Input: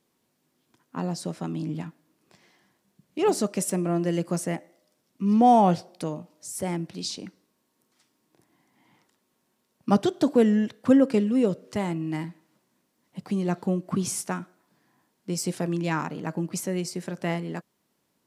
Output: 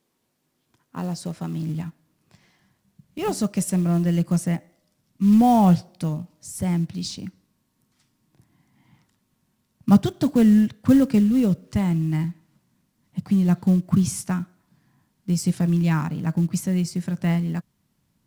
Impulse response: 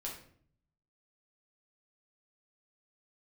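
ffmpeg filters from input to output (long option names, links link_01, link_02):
-af "acrusher=bits=6:mode=log:mix=0:aa=0.000001,asubboost=boost=10:cutoff=130"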